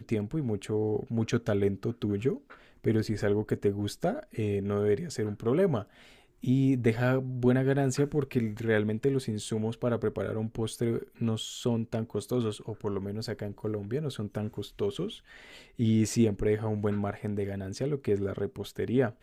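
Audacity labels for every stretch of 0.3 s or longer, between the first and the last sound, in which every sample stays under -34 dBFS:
2.360000	2.840000	silence
5.820000	6.440000	silence
15.130000	15.790000	silence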